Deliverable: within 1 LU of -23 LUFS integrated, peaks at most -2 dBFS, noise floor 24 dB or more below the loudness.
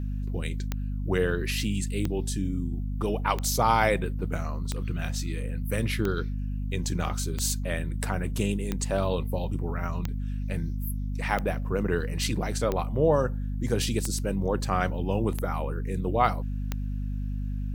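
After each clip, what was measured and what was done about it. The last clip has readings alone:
clicks found 13; hum 50 Hz; highest harmonic 250 Hz; hum level -28 dBFS; loudness -29.0 LUFS; peak level -7.0 dBFS; loudness target -23.0 LUFS
-> de-click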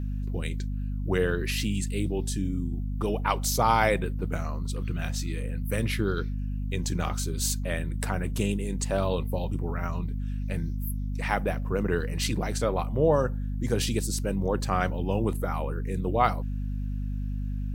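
clicks found 0; hum 50 Hz; highest harmonic 250 Hz; hum level -28 dBFS
-> hum notches 50/100/150/200/250 Hz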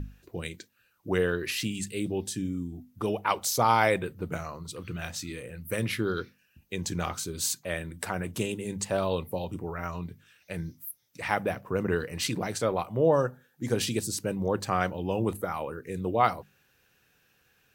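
hum not found; loudness -30.0 LUFS; peak level -7.5 dBFS; loudness target -23.0 LUFS
-> trim +7 dB; peak limiter -2 dBFS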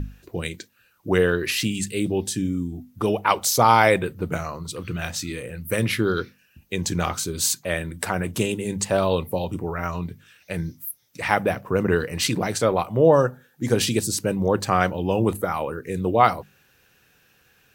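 loudness -23.0 LUFS; peak level -2.0 dBFS; noise floor -61 dBFS

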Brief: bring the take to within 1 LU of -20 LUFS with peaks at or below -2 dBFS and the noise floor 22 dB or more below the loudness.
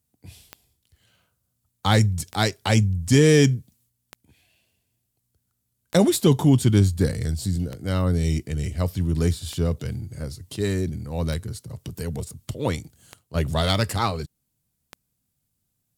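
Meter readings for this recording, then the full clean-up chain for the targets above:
clicks found 9; loudness -23.0 LUFS; peak level -3.5 dBFS; loudness target -20.0 LUFS
-> de-click; trim +3 dB; peak limiter -2 dBFS

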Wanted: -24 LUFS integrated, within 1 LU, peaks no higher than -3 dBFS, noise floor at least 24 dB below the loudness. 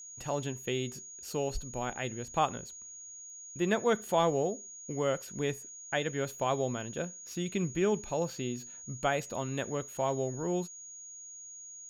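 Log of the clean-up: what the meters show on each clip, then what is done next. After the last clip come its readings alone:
steady tone 6.7 kHz; tone level -45 dBFS; loudness -33.5 LUFS; peak level -15.0 dBFS; loudness target -24.0 LUFS
-> band-stop 6.7 kHz, Q 30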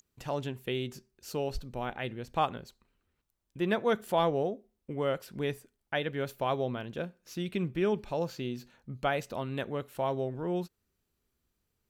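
steady tone not found; loudness -33.5 LUFS; peak level -15.0 dBFS; loudness target -24.0 LUFS
-> trim +9.5 dB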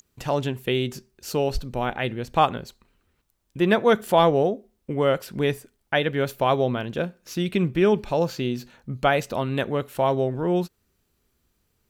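loudness -24.0 LUFS; peak level -5.5 dBFS; noise floor -72 dBFS

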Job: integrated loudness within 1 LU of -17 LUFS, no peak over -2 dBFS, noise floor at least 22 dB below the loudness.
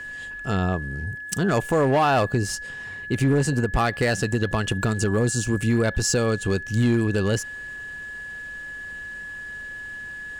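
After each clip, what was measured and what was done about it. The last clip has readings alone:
clipped samples 1.2%; clipping level -14.0 dBFS; steady tone 1.7 kHz; tone level -33 dBFS; loudness -24.5 LUFS; peak level -14.0 dBFS; loudness target -17.0 LUFS
-> clip repair -14 dBFS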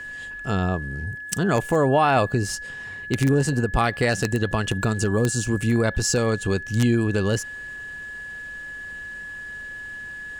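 clipped samples 0.0%; steady tone 1.7 kHz; tone level -33 dBFS
-> band-stop 1.7 kHz, Q 30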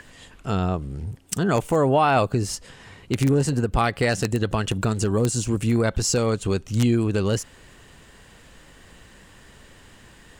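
steady tone not found; loudness -23.0 LUFS; peak level -5.0 dBFS; loudness target -17.0 LUFS
-> trim +6 dB; peak limiter -2 dBFS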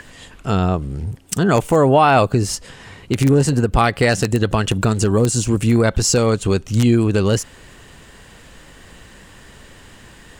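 loudness -17.0 LUFS; peak level -2.0 dBFS; noise floor -44 dBFS

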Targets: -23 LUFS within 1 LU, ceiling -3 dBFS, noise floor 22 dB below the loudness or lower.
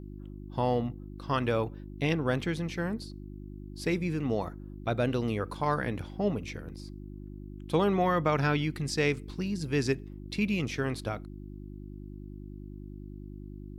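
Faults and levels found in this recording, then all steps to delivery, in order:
hum 50 Hz; highest harmonic 350 Hz; hum level -41 dBFS; loudness -31.0 LUFS; peak level -15.0 dBFS; loudness target -23.0 LUFS
-> de-hum 50 Hz, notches 7; trim +8 dB

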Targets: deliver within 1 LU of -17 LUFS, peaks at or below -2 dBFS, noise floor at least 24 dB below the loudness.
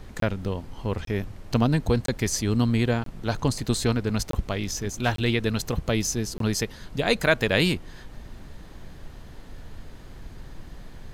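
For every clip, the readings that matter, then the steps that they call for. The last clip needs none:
dropouts 7; longest dropout 23 ms; noise floor -44 dBFS; noise floor target -50 dBFS; loudness -26.0 LUFS; peak level -6.5 dBFS; loudness target -17.0 LUFS
-> interpolate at 0.20/1.05/2.06/3.04/4.31/5.16/6.38 s, 23 ms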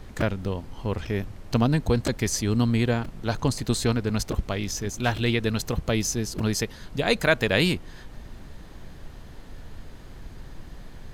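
dropouts 0; noise floor -44 dBFS; noise floor target -50 dBFS
-> noise print and reduce 6 dB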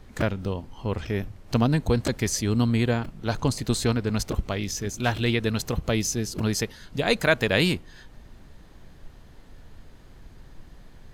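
noise floor -49 dBFS; noise floor target -50 dBFS
-> noise print and reduce 6 dB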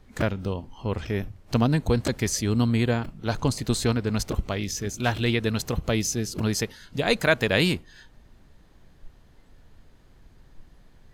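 noise floor -55 dBFS; loudness -26.0 LUFS; peak level -6.5 dBFS; loudness target -17.0 LUFS
-> trim +9 dB; peak limiter -2 dBFS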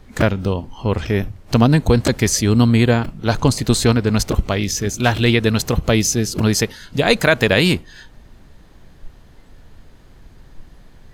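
loudness -17.0 LUFS; peak level -2.0 dBFS; noise floor -46 dBFS

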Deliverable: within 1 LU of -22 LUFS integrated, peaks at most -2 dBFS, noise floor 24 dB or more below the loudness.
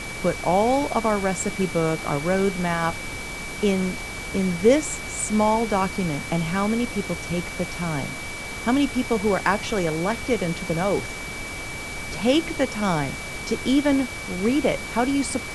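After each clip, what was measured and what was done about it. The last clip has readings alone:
steady tone 2.3 kHz; tone level -34 dBFS; noise floor -33 dBFS; noise floor target -48 dBFS; loudness -24.0 LUFS; peak level -5.0 dBFS; loudness target -22.0 LUFS
-> band-stop 2.3 kHz, Q 30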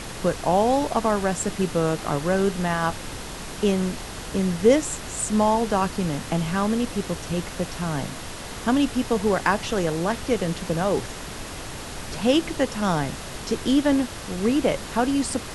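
steady tone not found; noise floor -36 dBFS; noise floor target -48 dBFS
-> noise print and reduce 12 dB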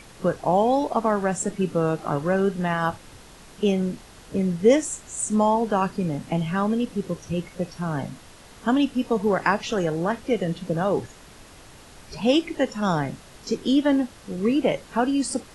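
noise floor -47 dBFS; noise floor target -48 dBFS
-> noise print and reduce 6 dB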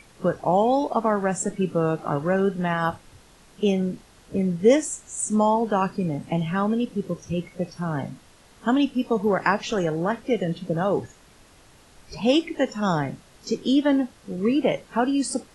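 noise floor -53 dBFS; loudness -24.0 LUFS; peak level -5.0 dBFS; loudness target -22.0 LUFS
-> trim +2 dB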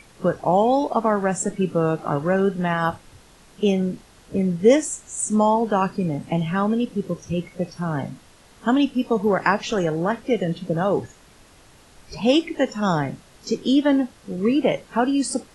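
loudness -22.0 LUFS; peak level -3.0 dBFS; noise floor -51 dBFS

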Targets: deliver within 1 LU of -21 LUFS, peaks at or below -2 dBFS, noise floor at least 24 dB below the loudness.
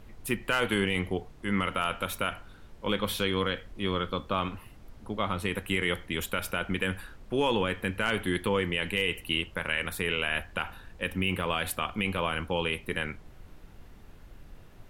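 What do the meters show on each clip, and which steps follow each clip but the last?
noise floor -51 dBFS; noise floor target -54 dBFS; loudness -30.0 LUFS; peak level -12.5 dBFS; loudness target -21.0 LUFS
-> noise print and reduce 6 dB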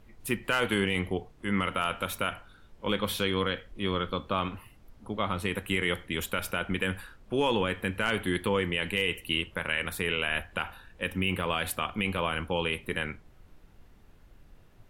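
noise floor -56 dBFS; loudness -30.0 LUFS; peak level -12.5 dBFS; loudness target -21.0 LUFS
-> trim +9 dB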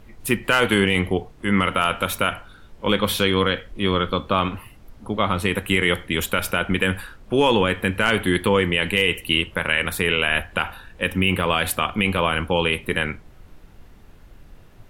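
loudness -21.0 LUFS; peak level -3.5 dBFS; noise floor -47 dBFS

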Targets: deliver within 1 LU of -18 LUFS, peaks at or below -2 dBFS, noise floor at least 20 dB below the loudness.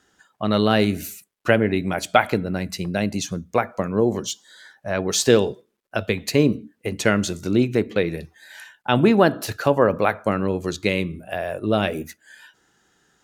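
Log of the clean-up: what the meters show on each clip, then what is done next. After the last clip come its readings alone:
loudness -22.0 LUFS; peak level -1.5 dBFS; loudness target -18.0 LUFS
-> trim +4 dB; peak limiter -2 dBFS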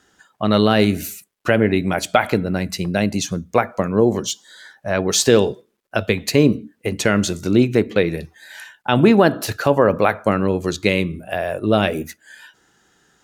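loudness -18.5 LUFS; peak level -2.0 dBFS; noise floor -66 dBFS

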